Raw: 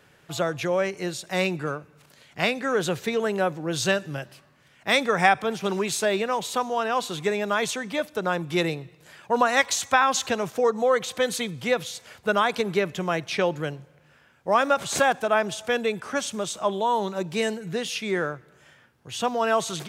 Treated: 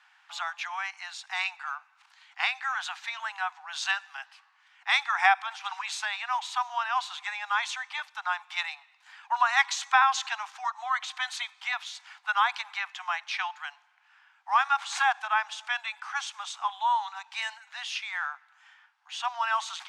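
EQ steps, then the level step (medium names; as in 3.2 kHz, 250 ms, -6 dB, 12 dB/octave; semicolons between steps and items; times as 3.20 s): steep high-pass 770 Hz 96 dB/octave; distance through air 81 m; treble shelf 9.2 kHz -6.5 dB; 0.0 dB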